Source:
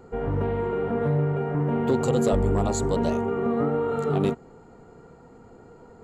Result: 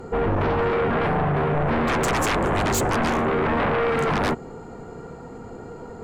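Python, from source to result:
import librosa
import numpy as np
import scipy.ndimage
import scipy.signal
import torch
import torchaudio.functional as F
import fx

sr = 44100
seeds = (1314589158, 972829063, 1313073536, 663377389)

y = fx.fold_sine(x, sr, drive_db=13, ceiling_db=-12.5)
y = y * librosa.db_to_amplitude(-6.0)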